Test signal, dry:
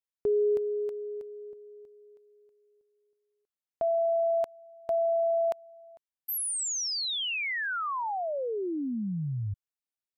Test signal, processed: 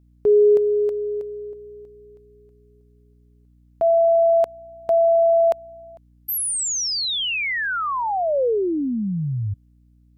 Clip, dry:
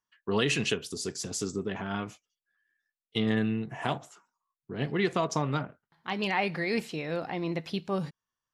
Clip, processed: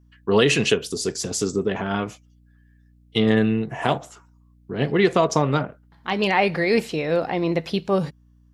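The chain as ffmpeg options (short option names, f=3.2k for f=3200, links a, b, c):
-af "adynamicequalizer=threshold=0.00891:dfrequency=500:dqfactor=1.5:tfrequency=500:tqfactor=1.5:attack=5:release=100:ratio=0.375:range=2.5:mode=boostabove:tftype=bell,aeval=exprs='val(0)+0.000891*(sin(2*PI*60*n/s)+sin(2*PI*2*60*n/s)/2+sin(2*PI*3*60*n/s)/3+sin(2*PI*4*60*n/s)/4+sin(2*PI*5*60*n/s)/5)':c=same,volume=7.5dB"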